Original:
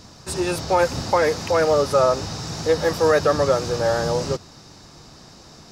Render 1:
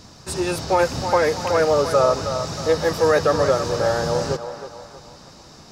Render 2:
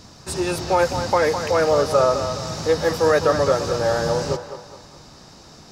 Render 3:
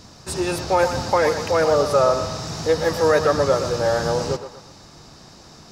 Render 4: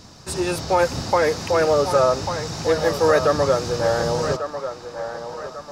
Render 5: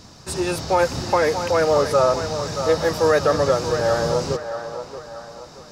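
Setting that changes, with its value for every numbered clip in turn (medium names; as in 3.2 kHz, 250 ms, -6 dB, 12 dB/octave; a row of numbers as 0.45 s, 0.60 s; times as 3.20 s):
band-passed feedback delay, time: 317 ms, 208 ms, 120 ms, 1144 ms, 628 ms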